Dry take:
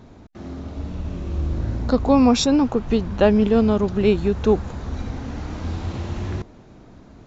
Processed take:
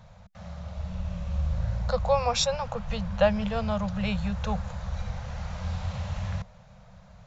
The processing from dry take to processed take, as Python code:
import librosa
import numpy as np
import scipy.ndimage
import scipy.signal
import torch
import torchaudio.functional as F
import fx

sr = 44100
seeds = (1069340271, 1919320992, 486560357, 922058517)

y = scipy.signal.sosfilt(scipy.signal.ellip(3, 1.0, 40, [190.0, 520.0], 'bandstop', fs=sr, output='sos'), x)
y = y * librosa.db_to_amplitude(-3.0)